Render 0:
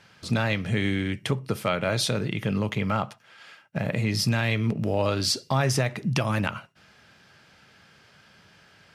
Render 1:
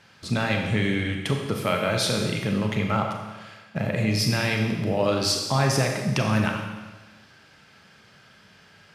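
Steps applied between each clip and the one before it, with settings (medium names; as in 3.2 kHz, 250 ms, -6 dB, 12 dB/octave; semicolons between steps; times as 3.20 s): Schroeder reverb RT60 1.3 s, combs from 29 ms, DRR 2 dB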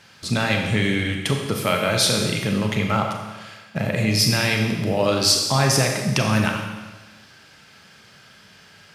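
treble shelf 3.6 kHz +7 dB; trim +2.5 dB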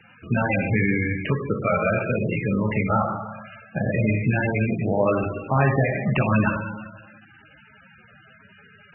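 MP3 8 kbps 24 kHz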